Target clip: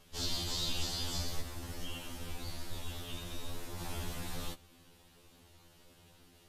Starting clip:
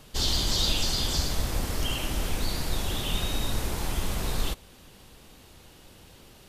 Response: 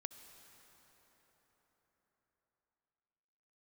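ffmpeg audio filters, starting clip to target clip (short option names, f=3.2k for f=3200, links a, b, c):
-filter_complex "[0:a]asplit=3[a][b][c];[a]afade=t=out:st=1.4:d=0.02[d];[b]flanger=delay=8.3:depth=7.3:regen=-27:speed=1.9:shape=sinusoidal,afade=t=in:st=1.4:d=0.02,afade=t=out:st=3.78:d=0.02[e];[c]afade=t=in:st=3.78:d=0.02[f];[d][e][f]amix=inputs=3:normalize=0,afftfilt=real='re*2*eq(mod(b,4),0)':imag='im*2*eq(mod(b,4),0)':win_size=2048:overlap=0.75,volume=-7dB"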